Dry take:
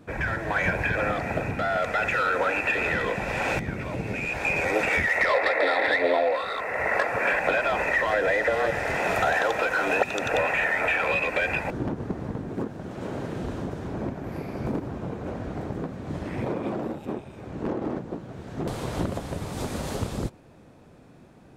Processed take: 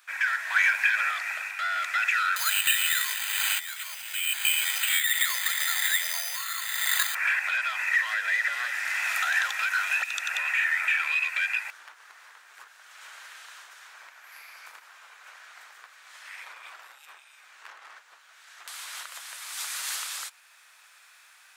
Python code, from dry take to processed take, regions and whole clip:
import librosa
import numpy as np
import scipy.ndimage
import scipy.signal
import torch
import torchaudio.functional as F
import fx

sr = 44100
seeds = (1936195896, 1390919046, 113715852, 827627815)

y = fx.chain(x, sr, fx.highpass(hz=430.0, slope=12),
    fx.resample_bad(factor=8, down='none', up='hold'), at=(2.36, 7.15))
y = scipy.signal.sosfilt(scipy.signal.butter(4, 1400.0, 'highpass', fs=sr, output='sos'), y)
y = fx.high_shelf(y, sr, hz=7400.0, db=8.0)
y = fx.rider(y, sr, range_db=10, speed_s=2.0)